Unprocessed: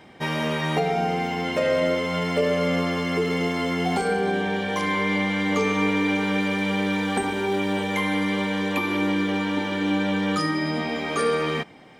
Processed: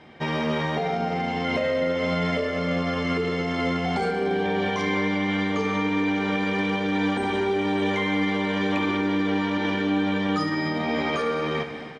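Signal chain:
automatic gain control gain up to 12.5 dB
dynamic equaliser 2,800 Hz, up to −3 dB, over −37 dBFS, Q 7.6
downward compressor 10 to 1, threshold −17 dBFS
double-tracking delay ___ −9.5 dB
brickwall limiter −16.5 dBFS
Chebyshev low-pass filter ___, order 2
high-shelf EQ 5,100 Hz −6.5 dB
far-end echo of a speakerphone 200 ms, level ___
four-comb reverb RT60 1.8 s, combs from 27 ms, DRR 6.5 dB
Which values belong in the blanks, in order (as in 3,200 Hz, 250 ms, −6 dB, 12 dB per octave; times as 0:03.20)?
13 ms, 5,400 Hz, −22 dB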